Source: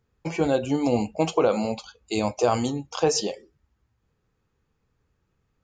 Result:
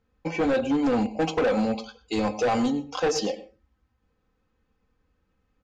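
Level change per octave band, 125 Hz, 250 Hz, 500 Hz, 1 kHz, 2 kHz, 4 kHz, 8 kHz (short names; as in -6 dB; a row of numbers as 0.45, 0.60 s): -4.5, +1.5, -1.5, -0.5, +3.5, -2.0, -5.5 dB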